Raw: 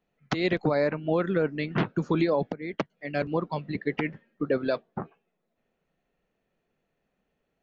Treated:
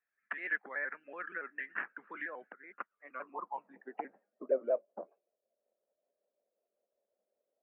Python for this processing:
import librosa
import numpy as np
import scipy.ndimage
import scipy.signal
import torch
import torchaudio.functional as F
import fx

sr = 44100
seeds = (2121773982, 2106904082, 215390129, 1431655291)

y = fx.pitch_trill(x, sr, semitones=-2.0, every_ms=94)
y = scipy.signal.sosfilt(scipy.signal.cheby1(4, 1.0, [200.0, 2700.0], 'bandpass', fs=sr, output='sos'), y)
y = fx.filter_sweep_bandpass(y, sr, from_hz=1700.0, to_hz=580.0, start_s=2.32, end_s=4.55, q=7.0)
y = F.gain(torch.from_numpy(y), 4.0).numpy()